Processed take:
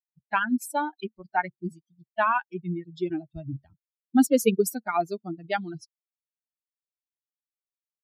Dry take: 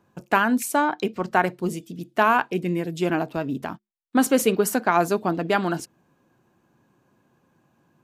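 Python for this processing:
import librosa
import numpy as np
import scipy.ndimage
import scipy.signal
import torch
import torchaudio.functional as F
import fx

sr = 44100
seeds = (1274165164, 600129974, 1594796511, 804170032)

y = fx.bin_expand(x, sr, power=3.0)
y = fx.low_shelf(y, sr, hz=210.0, db=10.5, at=(3.29, 4.92))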